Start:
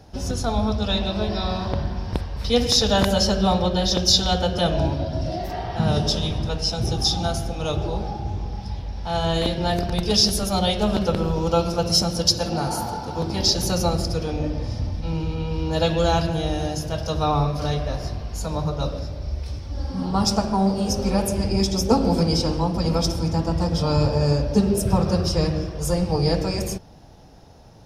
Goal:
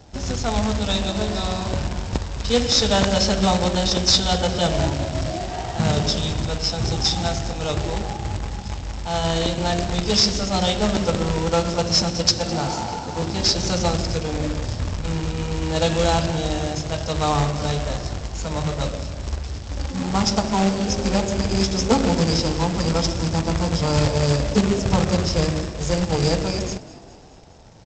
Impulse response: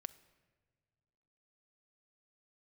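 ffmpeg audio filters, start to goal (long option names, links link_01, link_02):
-filter_complex "[0:a]aresample=16000,acrusher=bits=2:mode=log:mix=0:aa=0.000001,aresample=44100,asplit=6[link_01][link_02][link_03][link_04][link_05][link_06];[link_02]adelay=207,afreqshift=62,volume=-19dB[link_07];[link_03]adelay=414,afreqshift=124,volume=-23.9dB[link_08];[link_04]adelay=621,afreqshift=186,volume=-28.8dB[link_09];[link_05]adelay=828,afreqshift=248,volume=-33.6dB[link_10];[link_06]adelay=1035,afreqshift=310,volume=-38.5dB[link_11];[link_01][link_07][link_08][link_09][link_10][link_11]amix=inputs=6:normalize=0"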